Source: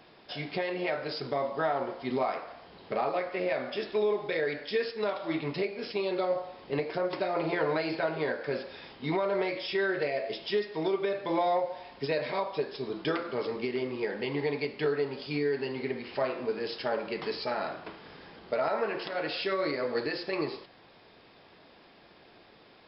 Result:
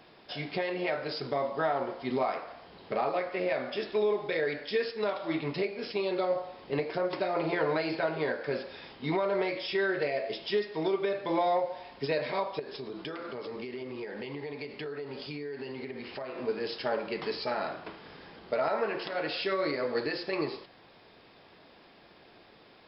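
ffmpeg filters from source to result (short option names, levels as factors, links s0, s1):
-filter_complex "[0:a]asettb=1/sr,asplit=3[s0][s1][s2];[s0]atrim=end=12.594[s3];[s1]atrim=start=12.59:end=16.38,asetpts=PTS-STARTPTS,afade=t=in:d=0.004:c=qsin,afade=t=out:st=3.786:d=0.004:c=qsin,acompressor=threshold=0.0178:ratio=6:attack=3.2:release=140:knee=1:detection=peak[s4];[s2]atrim=start=16.376[s5];[s3][s4]acrossfade=d=0.004:c1=hsin:c2=qsin[s6];[s6][s5]acrossfade=d=0.004:c1=qsin:c2=hsin"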